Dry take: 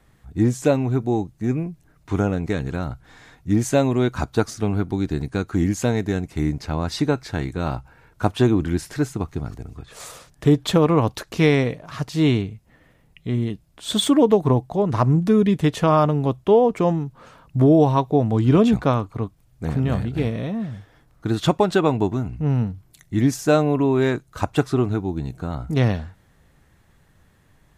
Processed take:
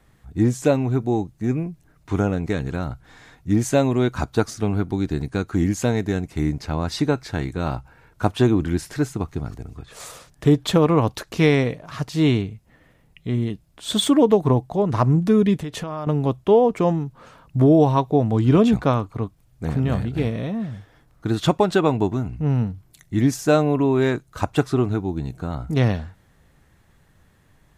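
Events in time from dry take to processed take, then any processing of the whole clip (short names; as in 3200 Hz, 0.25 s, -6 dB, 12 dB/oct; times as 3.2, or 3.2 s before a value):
15.55–16.07 compressor 16:1, threshold -25 dBFS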